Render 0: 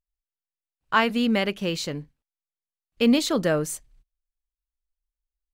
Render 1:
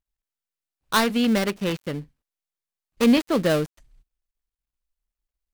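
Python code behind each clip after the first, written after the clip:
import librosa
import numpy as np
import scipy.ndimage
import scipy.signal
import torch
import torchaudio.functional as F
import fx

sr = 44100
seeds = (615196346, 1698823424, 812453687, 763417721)

y = fx.dead_time(x, sr, dead_ms=0.19)
y = F.gain(torch.from_numpy(y), 2.0).numpy()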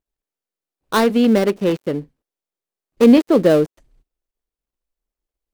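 y = fx.peak_eq(x, sr, hz=400.0, db=12.0, octaves=2.1)
y = F.gain(torch.from_numpy(y), -1.5).numpy()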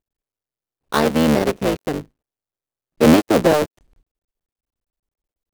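y = fx.cycle_switch(x, sr, every=3, mode='muted')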